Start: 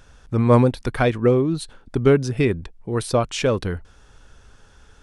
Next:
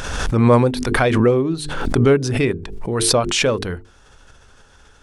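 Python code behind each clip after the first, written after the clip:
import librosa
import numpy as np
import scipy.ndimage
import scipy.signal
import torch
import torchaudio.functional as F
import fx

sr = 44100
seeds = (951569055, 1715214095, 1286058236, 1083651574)

y = fx.low_shelf(x, sr, hz=210.0, db=-4.5)
y = fx.hum_notches(y, sr, base_hz=50, count=9)
y = fx.pre_swell(y, sr, db_per_s=37.0)
y = y * librosa.db_to_amplitude(2.5)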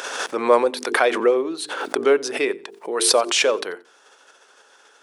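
y = scipy.signal.sosfilt(scipy.signal.butter(4, 370.0, 'highpass', fs=sr, output='sos'), x)
y = fx.echo_feedback(y, sr, ms=90, feedback_pct=25, wet_db=-23.5)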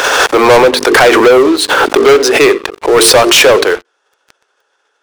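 y = scipy.signal.sosfilt(scipy.signal.butter(4, 280.0, 'highpass', fs=sr, output='sos'), x)
y = fx.high_shelf(y, sr, hz=6300.0, db=-9.0)
y = fx.leveller(y, sr, passes=5)
y = y * librosa.db_to_amplitude(3.0)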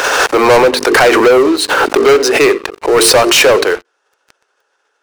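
y = fx.notch(x, sr, hz=3400.0, q=13.0)
y = y * librosa.db_to_amplitude(-2.0)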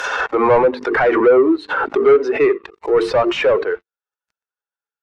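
y = fx.bin_expand(x, sr, power=1.5)
y = fx.env_lowpass_down(y, sr, base_hz=1900.0, full_db=-12.0)
y = fx.hpss(y, sr, part='percussive', gain_db=-4)
y = y * librosa.db_to_amplitude(-1.5)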